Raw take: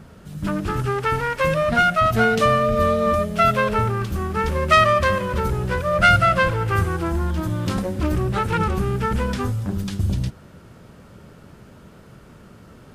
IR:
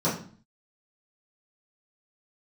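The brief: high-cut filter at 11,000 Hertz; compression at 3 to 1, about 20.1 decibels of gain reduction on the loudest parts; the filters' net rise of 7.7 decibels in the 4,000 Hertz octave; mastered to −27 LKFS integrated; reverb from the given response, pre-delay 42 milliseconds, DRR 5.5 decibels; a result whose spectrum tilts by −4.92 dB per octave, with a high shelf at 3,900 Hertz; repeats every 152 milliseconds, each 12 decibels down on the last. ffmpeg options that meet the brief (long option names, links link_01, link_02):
-filter_complex "[0:a]lowpass=11000,highshelf=frequency=3900:gain=4.5,equalizer=frequency=4000:width_type=o:gain=8,acompressor=threshold=-36dB:ratio=3,aecho=1:1:152|304|456:0.251|0.0628|0.0157,asplit=2[link_01][link_02];[1:a]atrim=start_sample=2205,adelay=42[link_03];[link_02][link_03]afir=irnorm=-1:irlink=0,volume=-18dB[link_04];[link_01][link_04]amix=inputs=2:normalize=0,volume=5.5dB"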